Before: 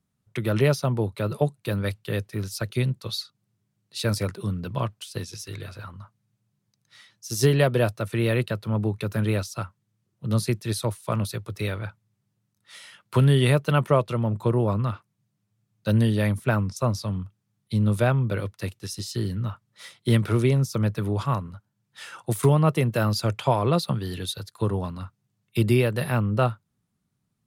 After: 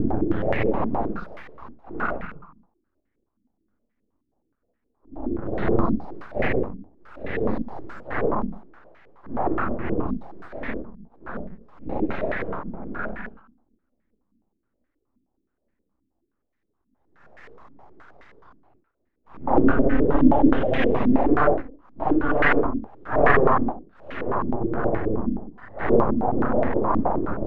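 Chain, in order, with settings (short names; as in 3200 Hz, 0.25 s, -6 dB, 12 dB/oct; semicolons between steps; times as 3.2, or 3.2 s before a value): Paulstretch 4.9×, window 0.05 s, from 9.18; full-wave rectifier; stepped low-pass 9.5 Hz 260–1900 Hz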